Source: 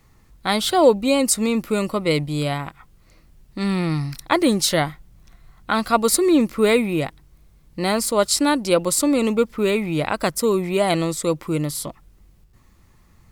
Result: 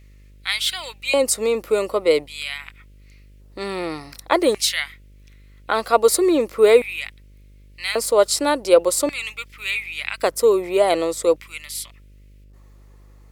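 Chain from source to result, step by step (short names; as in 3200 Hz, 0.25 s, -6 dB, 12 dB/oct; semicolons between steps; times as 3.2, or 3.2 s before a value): LFO high-pass square 0.44 Hz 460–2300 Hz; buzz 50 Hz, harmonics 12, -46 dBFS -9 dB/oct; gain -1.5 dB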